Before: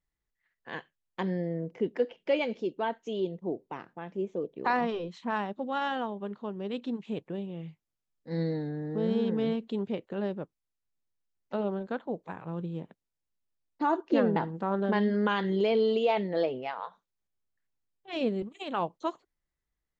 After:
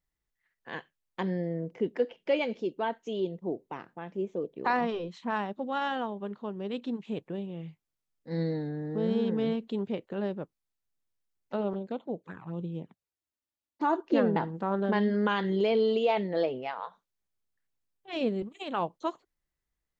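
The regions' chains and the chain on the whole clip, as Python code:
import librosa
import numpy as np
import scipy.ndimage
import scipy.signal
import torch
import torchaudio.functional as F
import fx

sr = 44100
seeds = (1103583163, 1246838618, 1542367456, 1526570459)

y = fx.chain(x, sr, fx.highpass(hz=59.0, slope=12),
    fx.env_flanger(rest_ms=3.5, full_db=-31.5), at=(11.73, 13.83))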